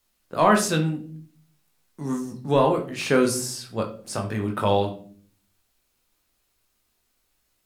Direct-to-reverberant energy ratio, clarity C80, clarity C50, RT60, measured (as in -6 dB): 2.0 dB, 15.5 dB, 10.0 dB, 0.50 s